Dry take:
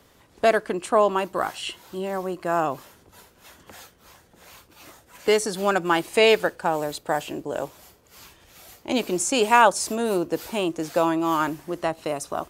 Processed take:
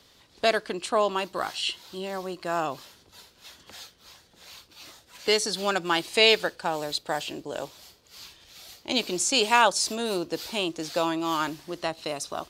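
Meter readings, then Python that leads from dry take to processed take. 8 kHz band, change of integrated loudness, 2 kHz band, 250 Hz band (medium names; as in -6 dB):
0.0 dB, -3.0 dB, -1.5 dB, -5.5 dB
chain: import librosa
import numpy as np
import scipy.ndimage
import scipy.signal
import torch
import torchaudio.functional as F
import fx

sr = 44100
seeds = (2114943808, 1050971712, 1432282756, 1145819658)

y = fx.peak_eq(x, sr, hz=4200.0, db=13.5, octaves=1.3)
y = y * librosa.db_to_amplitude(-5.5)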